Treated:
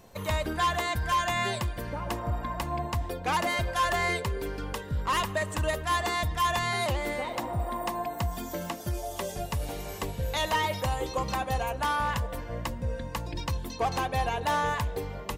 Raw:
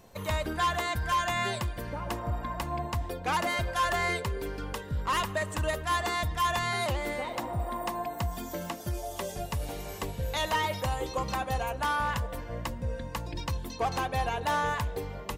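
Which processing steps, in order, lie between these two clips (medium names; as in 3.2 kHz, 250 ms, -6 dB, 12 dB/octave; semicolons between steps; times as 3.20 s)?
dynamic bell 1.4 kHz, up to -3 dB, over -45 dBFS, Q 5.4; trim +1.5 dB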